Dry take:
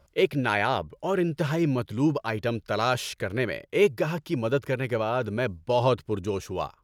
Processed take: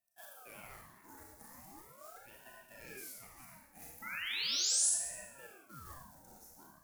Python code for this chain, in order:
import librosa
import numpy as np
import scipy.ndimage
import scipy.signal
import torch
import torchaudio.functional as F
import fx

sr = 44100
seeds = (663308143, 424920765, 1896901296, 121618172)

p1 = fx.reverse_delay_fb(x, sr, ms=203, feedback_pct=41, wet_db=-11.0)
p2 = scipy.signal.sosfilt(scipy.signal.butter(4, 99.0, 'highpass', fs=sr, output='sos'), p1)
p3 = fx.peak_eq(p2, sr, hz=3200.0, db=-14.5, octaves=2.8)
p4 = fx.quant_float(p3, sr, bits=2)
p5 = p3 + (p4 * librosa.db_to_amplitude(-8.0))
p6 = fx.fixed_phaser(p5, sr, hz=590.0, stages=8)
p7 = fx.spec_paint(p6, sr, seeds[0], shape='rise', start_s=4.02, length_s=0.88, low_hz=1600.0, high_hz=9800.0, level_db=-25.0)
p8 = F.preemphasis(torch.from_numpy(p7), 0.97).numpy()
p9 = fx.rev_schroeder(p8, sr, rt60_s=0.85, comb_ms=27, drr_db=-2.0)
p10 = fx.ring_lfo(p9, sr, carrier_hz=760.0, swing_pct=65, hz=0.39)
y = p10 * librosa.db_to_amplitude(-6.0)